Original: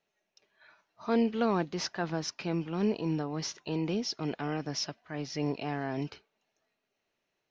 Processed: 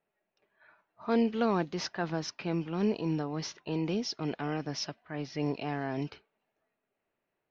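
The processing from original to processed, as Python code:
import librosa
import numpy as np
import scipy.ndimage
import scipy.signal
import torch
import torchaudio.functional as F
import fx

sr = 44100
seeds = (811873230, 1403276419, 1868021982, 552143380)

y = fx.env_lowpass(x, sr, base_hz=1900.0, full_db=-24.5)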